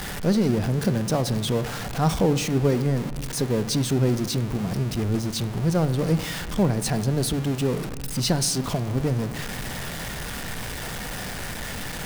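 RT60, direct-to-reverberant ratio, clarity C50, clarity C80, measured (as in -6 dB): 1.8 s, 11.5 dB, 14.0 dB, 15.0 dB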